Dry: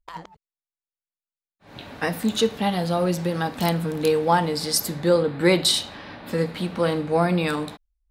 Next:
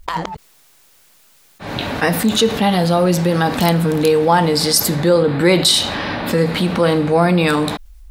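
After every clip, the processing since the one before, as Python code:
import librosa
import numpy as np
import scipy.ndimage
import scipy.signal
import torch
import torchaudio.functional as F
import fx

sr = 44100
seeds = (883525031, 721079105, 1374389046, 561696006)

y = fx.env_flatten(x, sr, amount_pct=50)
y = F.gain(torch.from_numpy(y), 4.0).numpy()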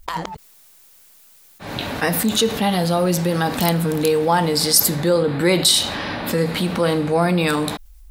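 y = fx.high_shelf(x, sr, hz=7300.0, db=8.5)
y = F.gain(torch.from_numpy(y), -4.0).numpy()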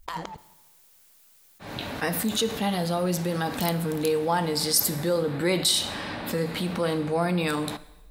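y = fx.rev_plate(x, sr, seeds[0], rt60_s=1.1, hf_ratio=1.0, predelay_ms=0, drr_db=15.5)
y = F.gain(torch.from_numpy(y), -7.5).numpy()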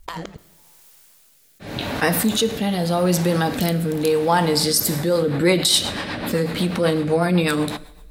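y = fx.rotary_switch(x, sr, hz=0.85, then_hz=8.0, switch_at_s=4.57)
y = F.gain(torch.from_numpy(y), 8.5).numpy()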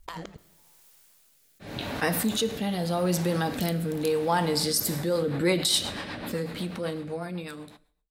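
y = fx.fade_out_tail(x, sr, length_s=2.35)
y = F.gain(torch.from_numpy(y), -7.0).numpy()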